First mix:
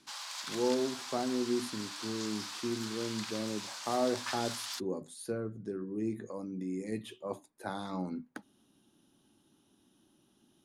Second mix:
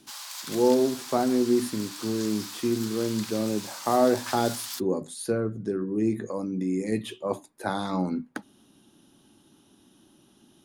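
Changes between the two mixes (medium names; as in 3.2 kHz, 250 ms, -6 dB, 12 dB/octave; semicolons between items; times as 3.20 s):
speech +9.5 dB; background: remove distance through air 58 m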